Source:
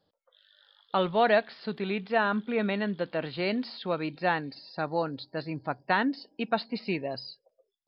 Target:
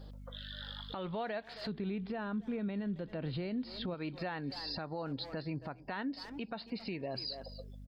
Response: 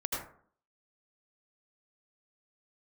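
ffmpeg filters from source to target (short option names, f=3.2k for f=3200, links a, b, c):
-filter_complex "[0:a]lowshelf=f=140:g=7,asplit=2[a][b];[b]adelay=270,highpass=300,lowpass=3.4k,asoftclip=type=hard:threshold=-29dB,volume=-20dB[c];[a][c]amix=inputs=2:normalize=0,aeval=exprs='val(0)+0.000794*(sin(2*PI*50*n/s)+sin(2*PI*2*50*n/s)/2+sin(2*PI*3*50*n/s)/3+sin(2*PI*4*50*n/s)/4+sin(2*PI*5*50*n/s)/5)':c=same,asplit=3[d][e][f];[d]afade=t=out:st=1.68:d=0.02[g];[e]lowshelf=f=410:g=12,afade=t=in:st=1.68:d=0.02,afade=t=out:st=3.93:d=0.02[h];[f]afade=t=in:st=3.93:d=0.02[i];[g][h][i]amix=inputs=3:normalize=0,acompressor=threshold=-49dB:ratio=4,alimiter=level_in=20.5dB:limit=-24dB:level=0:latency=1:release=141,volume=-20.5dB,volume=14.5dB"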